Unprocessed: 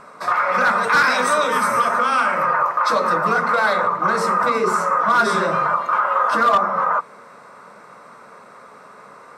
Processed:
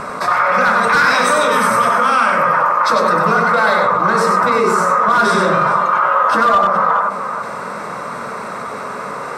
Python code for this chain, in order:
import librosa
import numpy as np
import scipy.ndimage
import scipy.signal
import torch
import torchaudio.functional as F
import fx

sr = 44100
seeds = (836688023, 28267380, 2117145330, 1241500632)

p1 = fx.low_shelf(x, sr, hz=130.0, db=6.5)
p2 = p1 + fx.echo_multitap(p1, sr, ms=(96, 422), db=(-5.0, -16.5), dry=0)
y = fx.env_flatten(p2, sr, amount_pct=50)